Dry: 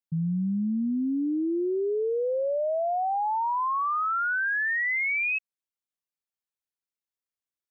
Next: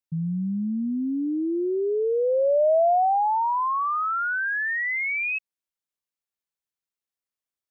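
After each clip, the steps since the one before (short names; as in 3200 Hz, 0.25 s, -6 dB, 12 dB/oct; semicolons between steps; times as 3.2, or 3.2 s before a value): dynamic EQ 650 Hz, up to +8 dB, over -43 dBFS, Q 1.6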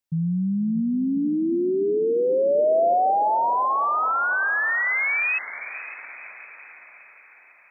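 in parallel at +1 dB: limiter -24 dBFS, peak gain reduction 8.5 dB; on the sum: diffused feedback echo 0.513 s, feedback 54%, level -13 dB; gain -3 dB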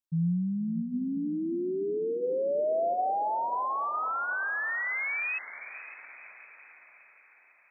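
dynamic EQ 170 Hz, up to +6 dB, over -42 dBFS, Q 5.2; de-hum 237.9 Hz, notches 6; gain -8.5 dB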